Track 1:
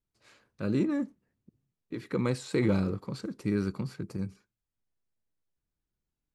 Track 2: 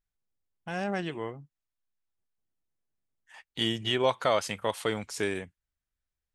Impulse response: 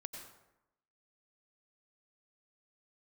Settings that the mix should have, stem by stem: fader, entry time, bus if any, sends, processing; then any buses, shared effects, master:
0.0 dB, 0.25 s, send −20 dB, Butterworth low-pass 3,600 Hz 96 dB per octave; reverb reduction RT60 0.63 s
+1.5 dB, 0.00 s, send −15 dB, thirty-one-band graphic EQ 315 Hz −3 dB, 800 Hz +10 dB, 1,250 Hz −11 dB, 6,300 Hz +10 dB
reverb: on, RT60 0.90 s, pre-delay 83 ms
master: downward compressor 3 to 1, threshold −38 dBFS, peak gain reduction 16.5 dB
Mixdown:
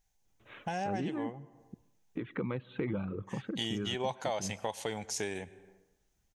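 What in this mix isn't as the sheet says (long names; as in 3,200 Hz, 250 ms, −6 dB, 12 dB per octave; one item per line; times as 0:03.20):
stem 1 0.0 dB → +9.0 dB
stem 2 +1.5 dB → +8.5 dB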